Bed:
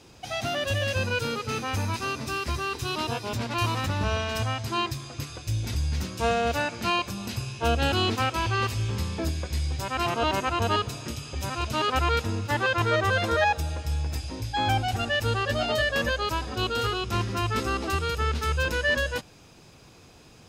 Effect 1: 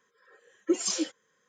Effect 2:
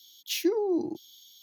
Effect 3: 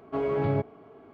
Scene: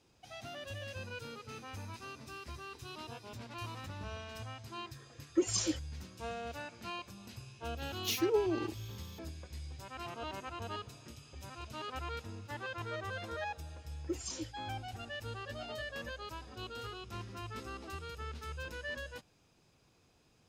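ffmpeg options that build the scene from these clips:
-filter_complex "[1:a]asplit=2[s0][s1];[0:a]volume=0.141[s2];[2:a]aphaser=in_gain=1:out_gain=1:delay=2.5:decay=0.45:speed=1.7:type=triangular[s3];[s0]atrim=end=1.48,asetpts=PTS-STARTPTS,volume=0.631,afade=t=in:d=0.004:c=hsin,afade=t=out:st=1.476:d=0.004:c=hsin,adelay=4680[s4];[s3]atrim=end=1.42,asetpts=PTS-STARTPTS,volume=0.596,afade=t=in:d=0.004:c=hsin,afade=t=out:st=1.416:d=0.004:c=hsin,adelay=7770[s5];[s1]atrim=end=1.48,asetpts=PTS-STARTPTS,volume=0.237,afade=t=in:d=0.004:c=hsin,afade=t=out:st=1.476:d=0.004:c=hsin,adelay=13400[s6];[s2][s4][s5][s6]amix=inputs=4:normalize=0"

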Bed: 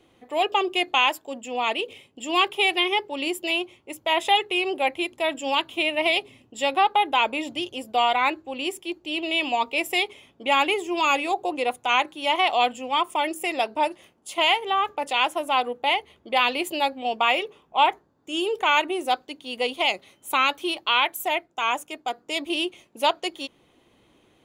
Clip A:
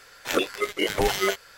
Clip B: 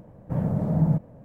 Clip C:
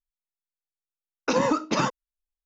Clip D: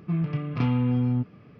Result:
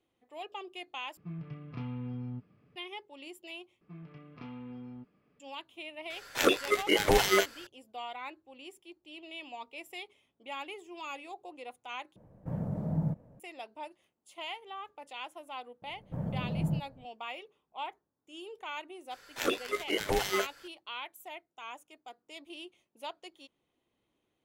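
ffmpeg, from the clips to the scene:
-filter_complex "[4:a]asplit=2[s0][s1];[1:a]asplit=2[s2][s3];[2:a]asplit=2[s4][s5];[0:a]volume=0.1[s6];[s1]equalizer=f=110:w=1.3:g=-12.5[s7];[s5]asubboost=boost=2.5:cutoff=140[s8];[s6]asplit=4[s9][s10][s11][s12];[s9]atrim=end=1.174[s13];[s0]atrim=end=1.59,asetpts=PTS-STARTPTS,volume=0.178[s14];[s10]atrim=start=2.756:end=3.814[s15];[s7]atrim=end=1.59,asetpts=PTS-STARTPTS,volume=0.15[s16];[s11]atrim=start=5.396:end=12.164[s17];[s4]atrim=end=1.24,asetpts=PTS-STARTPTS,volume=0.335[s18];[s12]atrim=start=13.396[s19];[s2]atrim=end=1.57,asetpts=PTS-STARTPTS,volume=0.891,afade=t=in:d=0.004:c=hsin,afade=t=out:st=1.566:d=0.004:c=hsin,adelay=269010S[s20];[s8]atrim=end=1.24,asetpts=PTS-STARTPTS,volume=0.316,afade=t=in:d=0.004:c=hsin,afade=t=out:st=1.236:d=0.004:c=hsin,adelay=15820[s21];[s3]atrim=end=1.57,asetpts=PTS-STARTPTS,volume=0.473,afade=t=in:d=0.004:c=hsin,afade=t=out:st=1.566:d=0.004:c=hsin,adelay=19110[s22];[s13][s14]acrossfade=d=0.004:c1=hsin:c2=hsin[s23];[s23][s15]acrossfade=d=0.004:c1=hsin:c2=hsin[s24];[s24][s16]acrossfade=d=0.004:c1=hsin:c2=hsin[s25];[s25][s17]acrossfade=d=0.004:c1=hsin:c2=hsin[s26];[s26][s18]acrossfade=d=0.004:c1=hsin:c2=hsin[s27];[s27][s19]acrossfade=d=0.004:c1=hsin:c2=hsin[s28];[s28][s20][s21][s22]amix=inputs=4:normalize=0"

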